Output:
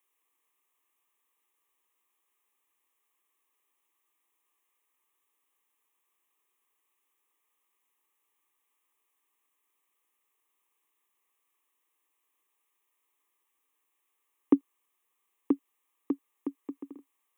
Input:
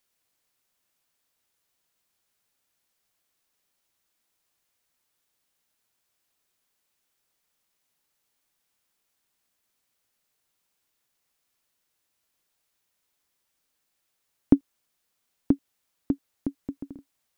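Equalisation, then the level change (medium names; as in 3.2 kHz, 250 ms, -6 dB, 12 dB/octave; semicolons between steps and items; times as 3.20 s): high-pass 190 Hz 24 dB/octave; peaking EQ 1.2 kHz +12 dB 0.34 oct; static phaser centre 950 Hz, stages 8; 0.0 dB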